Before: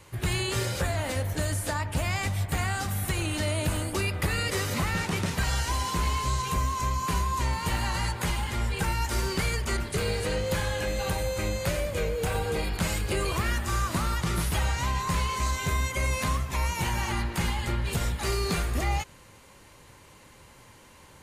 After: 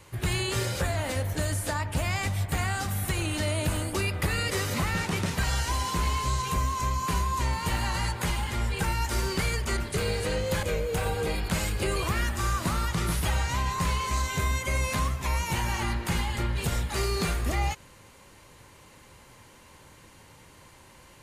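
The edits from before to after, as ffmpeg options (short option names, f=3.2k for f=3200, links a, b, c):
-filter_complex "[0:a]asplit=2[a][b];[a]atrim=end=10.632[c];[b]atrim=start=11.918[d];[c][d]acrossfade=d=0.004:c1=hsin:c2=hsin"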